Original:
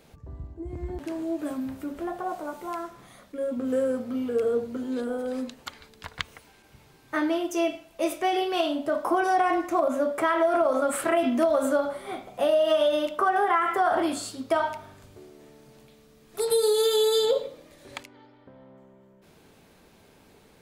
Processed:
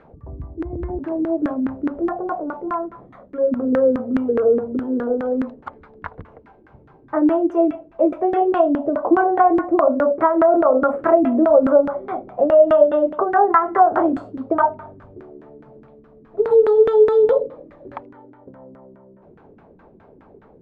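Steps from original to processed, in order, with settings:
dynamic equaliser 4,600 Hz, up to −5 dB, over −44 dBFS, Q 0.72
auto-filter low-pass saw down 4.8 Hz 260–1,600 Hz
level +5.5 dB

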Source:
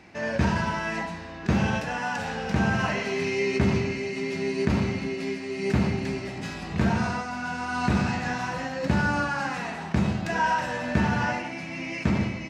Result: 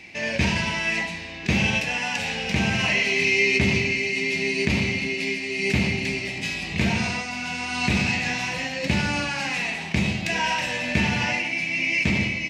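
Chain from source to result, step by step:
high shelf with overshoot 1,800 Hz +8 dB, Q 3

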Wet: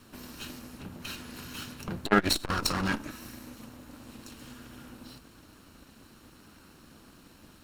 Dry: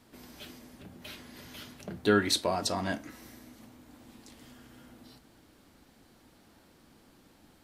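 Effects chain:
lower of the sound and its delayed copy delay 0.72 ms
saturating transformer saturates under 580 Hz
level +7 dB

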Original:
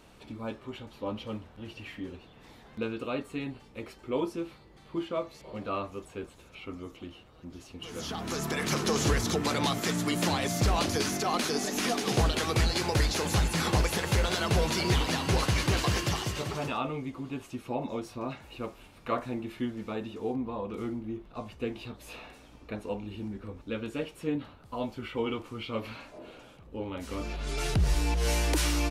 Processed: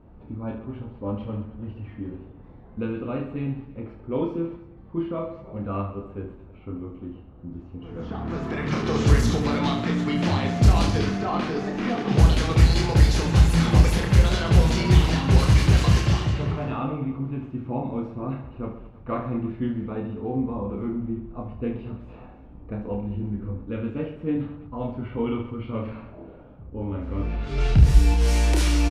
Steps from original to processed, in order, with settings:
bass and treble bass +10 dB, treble −1 dB
low-pass that shuts in the quiet parts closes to 900 Hz, open at −14 dBFS
reverse bouncing-ball delay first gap 30 ms, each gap 1.4×, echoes 5

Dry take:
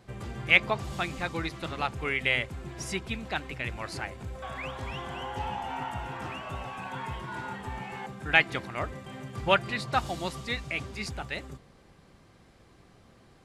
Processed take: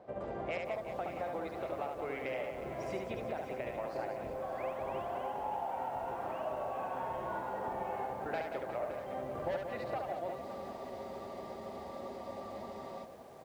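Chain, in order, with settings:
sub-octave generator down 1 octave, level +1 dB
resonant band-pass 610 Hz, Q 3.4
soft clipping −29 dBFS, distortion −9 dB
downward compressor 10 to 1, threshold −48 dBFS, peak gain reduction 17 dB
reverse bouncing-ball delay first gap 70 ms, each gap 1.6×, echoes 5
frozen spectrum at 0:10.46, 2.58 s
feedback echo at a low word length 565 ms, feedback 55%, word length 11 bits, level −12 dB
level +11.5 dB

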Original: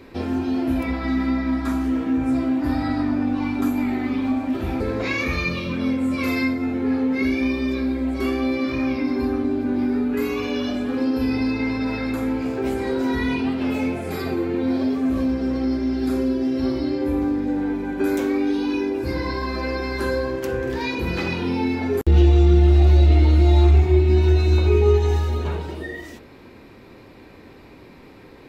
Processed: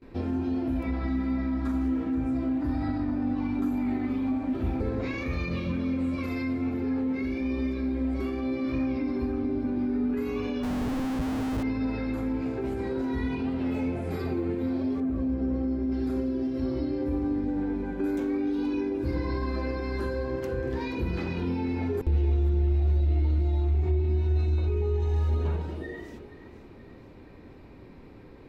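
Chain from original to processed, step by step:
brickwall limiter −17.5 dBFS, peak gain reduction 11 dB
echo with a time of its own for lows and highs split 490 Hz, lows 330 ms, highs 477 ms, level −14 dB
0:10.63–0:11.63: comparator with hysteresis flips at −29 dBFS
spectral tilt −2 dB per octave
noise gate with hold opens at −34 dBFS
0:15.00–0:15.92: high-shelf EQ 2,200 Hz −11.5 dB
level −7.5 dB

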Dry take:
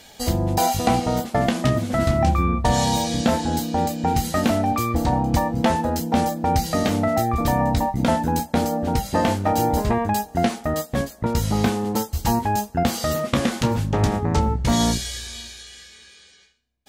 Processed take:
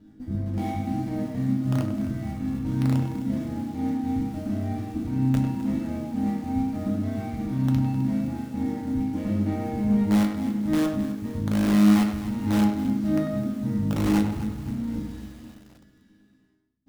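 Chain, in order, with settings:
running median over 41 samples
low shelf with overshoot 380 Hz +9.5 dB, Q 3
notch filter 2,500 Hz, Q 19
reversed playback
downward compressor 12 to 1, threshold −16 dBFS, peak gain reduction 15.5 dB
reversed playback
resonators tuned to a chord G#2 major, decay 0.73 s
in parallel at −6 dB: wrap-around overflow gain 27.5 dB
on the sum: tape delay 97 ms, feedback 27%, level −5 dB, low-pass 3,200 Hz
convolution reverb, pre-delay 3 ms, DRR 5 dB
feedback echo at a low word length 259 ms, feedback 55%, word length 8 bits, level −13.5 dB
level +7.5 dB

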